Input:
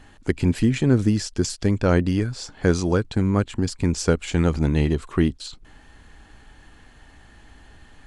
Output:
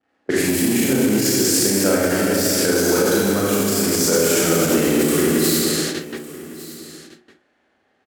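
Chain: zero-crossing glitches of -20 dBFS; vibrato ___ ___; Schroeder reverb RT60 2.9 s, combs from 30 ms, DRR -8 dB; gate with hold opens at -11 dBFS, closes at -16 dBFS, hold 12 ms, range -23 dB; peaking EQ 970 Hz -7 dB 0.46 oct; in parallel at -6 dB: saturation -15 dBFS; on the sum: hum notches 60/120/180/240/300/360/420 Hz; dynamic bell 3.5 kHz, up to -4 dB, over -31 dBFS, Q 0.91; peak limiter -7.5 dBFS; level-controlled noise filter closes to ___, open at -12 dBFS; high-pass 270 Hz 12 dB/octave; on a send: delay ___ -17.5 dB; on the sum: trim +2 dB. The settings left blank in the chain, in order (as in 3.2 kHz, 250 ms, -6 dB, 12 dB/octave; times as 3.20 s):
2.2 Hz, 46 cents, 740 Hz, 1156 ms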